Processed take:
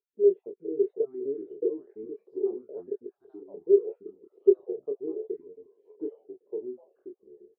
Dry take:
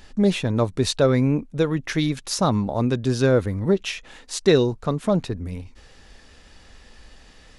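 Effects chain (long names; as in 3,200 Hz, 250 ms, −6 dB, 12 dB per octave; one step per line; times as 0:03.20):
time-frequency cells dropped at random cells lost 57%
double-tracking delay 22 ms −4.5 dB
delay with pitch and tempo change per echo 384 ms, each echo −4 semitones, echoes 2
flat-topped band-pass 410 Hz, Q 5
level +1.5 dB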